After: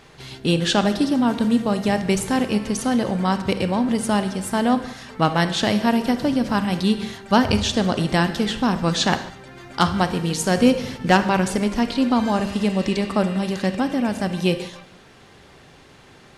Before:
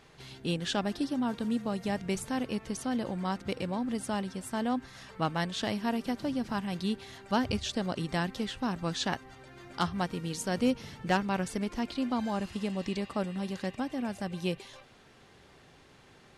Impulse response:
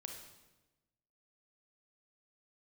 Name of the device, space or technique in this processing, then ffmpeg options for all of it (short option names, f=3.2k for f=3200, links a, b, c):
keyed gated reverb: -filter_complex "[0:a]asplit=3[a][b][c];[1:a]atrim=start_sample=2205[d];[b][d]afir=irnorm=-1:irlink=0[e];[c]apad=whole_len=722215[f];[e][f]sidechaingate=range=-8dB:threshold=-46dB:ratio=16:detection=peak,volume=2.5dB[g];[a][g]amix=inputs=2:normalize=0,volume=7dB"